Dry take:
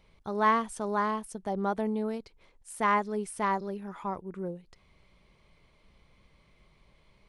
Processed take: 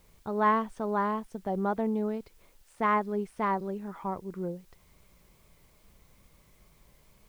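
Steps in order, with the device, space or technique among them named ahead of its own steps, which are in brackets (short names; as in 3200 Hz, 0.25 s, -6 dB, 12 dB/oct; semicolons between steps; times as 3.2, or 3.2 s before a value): cassette deck with a dirty head (tape spacing loss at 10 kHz 23 dB; wow and flutter; white noise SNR 35 dB); gain +2 dB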